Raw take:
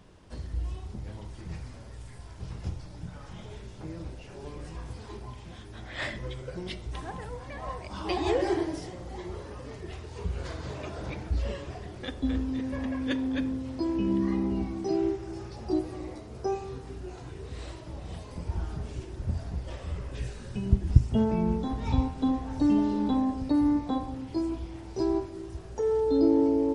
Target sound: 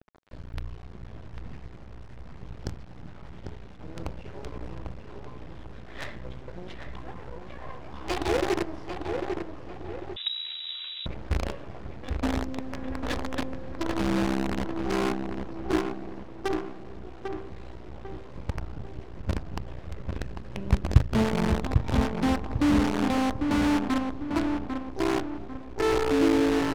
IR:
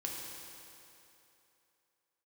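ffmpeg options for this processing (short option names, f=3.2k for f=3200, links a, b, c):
-filter_complex "[0:a]asettb=1/sr,asplit=3[a][b][c];[a]atrim=end=3.964[d];[b]atrim=start=3.96:end=4.75,asetpts=PTS-STARTPTS,afade=t=in:d=0.004:c=qsin,afade=t=out:st=0.786:d=0.004:c=qsin,acontrast=55[e];[c]atrim=start=4.746[f];[d][e]acrossfade=d=0.004:c1=hsin:c2=qsin[g];[g][f]acrossfade=d=0.004:c1=qsin:c2=hsin,asettb=1/sr,asplit=3[h][i][j];[h]atrim=end=15.924[k];[i]atrim=start=15.92:end=16.79,asetpts=PTS-STARTPTS,afade=t=in:d=0.004:c=qsin,afade=t=out:st=0.866:d=0.004:c=qsin,highpass=220[l];[j]atrim=start=16.786[m];[k][l]acrossfade=d=0.004:c1=hsin:c2=qsin[n];[n][m]acrossfade=d=0.004:c1=qsin:c2=hsin,acrusher=bits=5:dc=4:mix=0:aa=0.000001,adynamicsmooth=sensitivity=2:basefreq=3k,asplit=2[o][p];[p]adelay=797,lowpass=f=2.1k:p=1,volume=-5dB,asplit=2[q][r];[r]adelay=797,lowpass=f=2.1k:p=1,volume=0.42,asplit=2[s][t];[t]adelay=797,lowpass=f=2.1k:p=1,volume=0.42,asplit=2[u][v];[v]adelay=797,lowpass=f=2.1k:p=1,volume=0.42,asplit=2[w][x];[x]adelay=797,lowpass=f=2.1k:p=1,volume=0.42[y];[o][q][s][u][w][y]amix=inputs=6:normalize=0,asettb=1/sr,asplit=3[z][aa][ab];[z]atrim=end=10.164[ac];[aa]atrim=start=10.16:end=11.06,asetpts=PTS-STARTPTS,afade=t=in:d=0.004:c=qsin,afade=t=out:st=0.896:d=0.004:c=qsin,lowpass=f=3.3k:t=q:w=0.5098,lowpass=f=3.3k:t=q:w=0.6013,lowpass=f=3.3k:t=q:w=0.9,lowpass=f=3.3k:t=q:w=2.563,afreqshift=-3900[ad];[ab]atrim=start=11.056[ae];[ac][ad]acrossfade=d=0.004:c1=hsin:c2=qsin[af];[af][ae]acrossfade=d=0.004:c1=qsin:c2=hsin"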